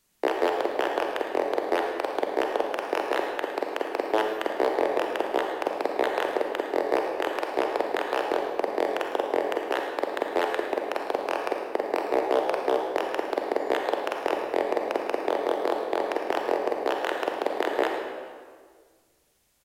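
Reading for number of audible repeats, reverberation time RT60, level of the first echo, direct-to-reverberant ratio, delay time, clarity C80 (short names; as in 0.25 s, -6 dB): 1, 1.7 s, -12.0 dB, 1.5 dB, 0.108 s, 4.0 dB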